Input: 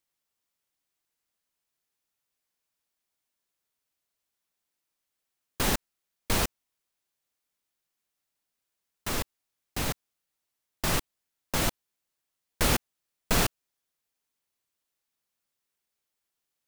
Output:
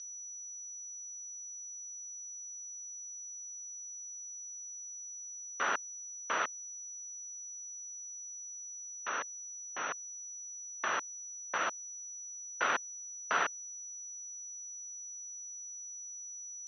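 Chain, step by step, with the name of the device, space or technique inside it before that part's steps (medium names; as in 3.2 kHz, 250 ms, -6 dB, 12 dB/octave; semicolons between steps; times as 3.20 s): toy sound module (decimation joined by straight lines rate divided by 6×; class-D stage that switches slowly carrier 5.9 kHz; cabinet simulation 790–4700 Hz, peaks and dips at 800 Hz -4 dB, 1.4 kHz +6 dB, 2.2 kHz -6 dB)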